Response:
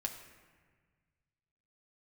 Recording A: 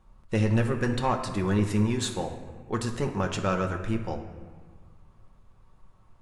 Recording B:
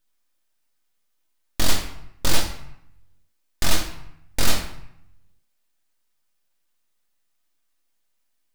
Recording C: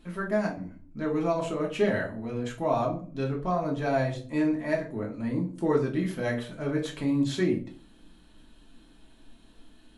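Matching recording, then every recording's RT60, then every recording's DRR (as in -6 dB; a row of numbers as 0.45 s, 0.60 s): A; 1.5 s, 0.75 s, 0.45 s; 2.5 dB, 1.5 dB, -2.5 dB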